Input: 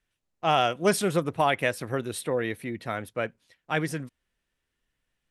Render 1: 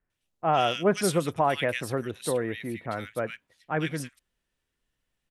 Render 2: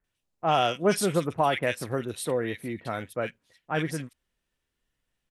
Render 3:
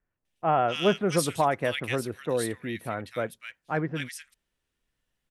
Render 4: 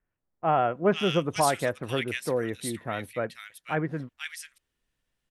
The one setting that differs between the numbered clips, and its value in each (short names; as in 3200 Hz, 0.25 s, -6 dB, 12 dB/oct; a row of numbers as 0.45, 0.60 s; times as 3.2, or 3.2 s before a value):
bands offset in time, time: 100, 40, 250, 490 ms